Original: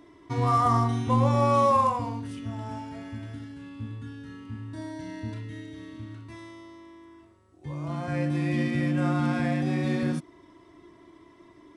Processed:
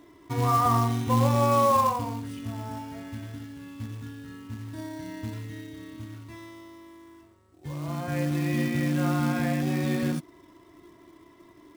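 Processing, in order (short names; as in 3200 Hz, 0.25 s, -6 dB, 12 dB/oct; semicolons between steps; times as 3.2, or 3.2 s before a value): short-mantissa float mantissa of 2-bit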